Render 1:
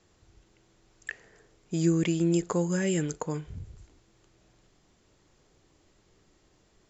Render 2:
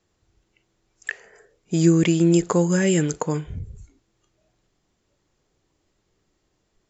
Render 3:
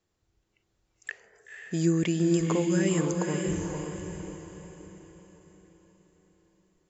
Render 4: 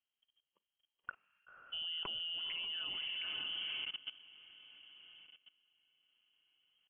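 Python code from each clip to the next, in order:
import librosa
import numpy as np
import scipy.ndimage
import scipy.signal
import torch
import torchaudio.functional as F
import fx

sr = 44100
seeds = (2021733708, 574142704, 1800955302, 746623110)

y1 = fx.noise_reduce_blind(x, sr, reduce_db=14)
y1 = F.gain(torch.from_numpy(y1), 8.0).numpy()
y2 = fx.echo_diffused(y1, sr, ms=511, feedback_pct=44, wet_db=-3.5)
y2 = F.gain(torch.from_numpy(y2), -8.0).numpy()
y3 = fx.level_steps(y2, sr, step_db=18)
y3 = fx.freq_invert(y3, sr, carrier_hz=3200)
y3 = F.gain(torch.from_numpy(y3), -5.0).numpy()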